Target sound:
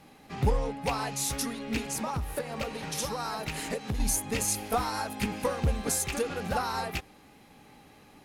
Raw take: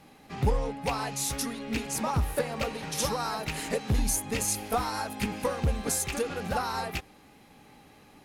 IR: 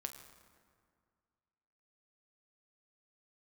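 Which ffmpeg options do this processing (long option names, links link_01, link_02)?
-filter_complex "[0:a]asettb=1/sr,asplit=3[link_01][link_02][link_03];[link_01]atrim=end=1.864[link_04];[link_02]atrim=start=1.86:end=4,asetpts=PTS-STARTPTS,afade=type=in:duration=0.004:curve=qsin,afade=type=out:start_time=2.136:duration=0.004:curve=qsin,acompressor=threshold=-29dB:ratio=6[link_05];[link_03]atrim=start=3.996[link_06];[link_04][link_05]acrossfade=duration=0.004:curve1=hsin:curve2=qsin[link_07];[link_07][link_06]acrossfade=duration=0.004:curve1=qsin:curve2=hsin"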